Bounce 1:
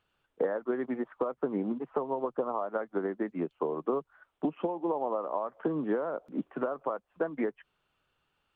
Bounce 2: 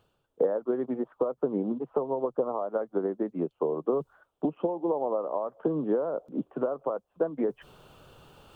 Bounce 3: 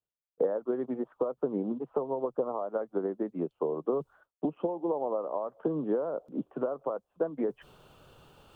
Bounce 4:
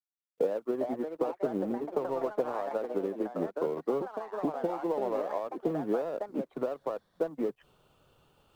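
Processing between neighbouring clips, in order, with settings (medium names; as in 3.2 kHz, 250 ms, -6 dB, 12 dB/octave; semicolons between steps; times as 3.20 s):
reverse; upward compressor, threshold -33 dBFS; reverse; graphic EQ 125/500/2000 Hz +5/+5/-12 dB
expander -53 dBFS; trim -2.5 dB
companding laws mixed up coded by A; band-stop 1.6 kHz, Q 25; ever faster or slower copies 488 ms, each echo +4 st, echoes 2, each echo -6 dB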